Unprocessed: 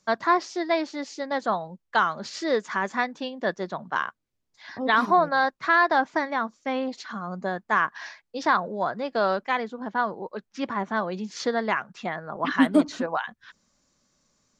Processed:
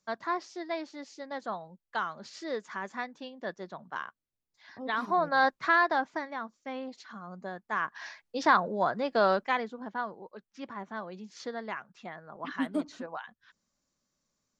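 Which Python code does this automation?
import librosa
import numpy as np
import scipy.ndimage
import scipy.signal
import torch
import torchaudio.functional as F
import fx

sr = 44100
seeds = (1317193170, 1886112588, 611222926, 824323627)

y = fx.gain(x, sr, db=fx.line((5.03, -10.5), (5.47, -0.5), (6.28, -10.5), (7.68, -10.5), (8.22, -1.0), (9.35, -1.0), (10.26, -12.0)))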